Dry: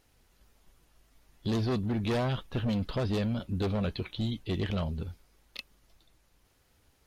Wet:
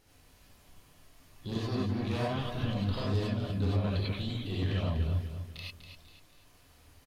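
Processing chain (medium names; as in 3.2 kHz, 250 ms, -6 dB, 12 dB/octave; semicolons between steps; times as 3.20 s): peak limiter -33.5 dBFS, peak gain reduction 10 dB; on a send: feedback delay 246 ms, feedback 40%, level -9 dB; on the sum: gated-style reverb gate 120 ms rising, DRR -5.5 dB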